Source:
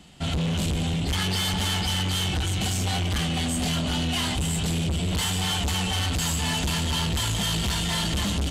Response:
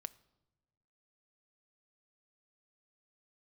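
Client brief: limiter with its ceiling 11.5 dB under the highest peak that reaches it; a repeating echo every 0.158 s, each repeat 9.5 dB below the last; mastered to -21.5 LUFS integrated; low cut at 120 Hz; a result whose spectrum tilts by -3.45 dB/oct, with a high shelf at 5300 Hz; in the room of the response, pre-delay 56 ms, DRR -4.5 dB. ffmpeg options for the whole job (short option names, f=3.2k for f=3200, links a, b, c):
-filter_complex "[0:a]highpass=120,highshelf=f=5.3k:g=8,alimiter=level_in=0.5dB:limit=-24dB:level=0:latency=1,volume=-0.5dB,aecho=1:1:158|316|474|632:0.335|0.111|0.0365|0.012,asplit=2[a][b];[1:a]atrim=start_sample=2205,adelay=56[c];[b][c]afir=irnorm=-1:irlink=0,volume=8.5dB[d];[a][d]amix=inputs=2:normalize=0,volume=4dB"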